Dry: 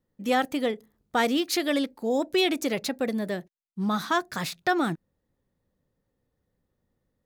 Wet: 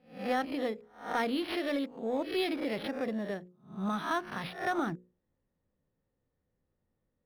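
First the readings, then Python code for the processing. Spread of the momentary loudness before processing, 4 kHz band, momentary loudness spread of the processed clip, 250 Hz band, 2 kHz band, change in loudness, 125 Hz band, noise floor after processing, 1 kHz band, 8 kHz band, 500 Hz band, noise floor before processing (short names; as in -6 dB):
9 LU, -10.0 dB, 8 LU, -6.5 dB, -7.0 dB, -7.0 dB, -6.5 dB, -82 dBFS, -6.0 dB, -17.0 dB, -6.5 dB, -79 dBFS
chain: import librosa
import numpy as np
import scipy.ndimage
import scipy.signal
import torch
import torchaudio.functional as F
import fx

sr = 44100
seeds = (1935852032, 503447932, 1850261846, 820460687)

p1 = fx.spec_swells(x, sr, rise_s=0.41)
p2 = scipy.signal.sosfilt(scipy.signal.butter(2, 5400.0, 'lowpass', fs=sr, output='sos'), p1)
p3 = 10.0 ** (-25.5 / 20.0) * np.tanh(p2 / 10.0 ** (-25.5 / 20.0))
p4 = p2 + F.gain(torch.from_numpy(p3), -6.0).numpy()
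p5 = fx.hum_notches(p4, sr, base_hz=60, count=9)
p6 = np.interp(np.arange(len(p5)), np.arange(len(p5))[::6], p5[::6])
y = F.gain(torch.from_numpy(p6), -9.0).numpy()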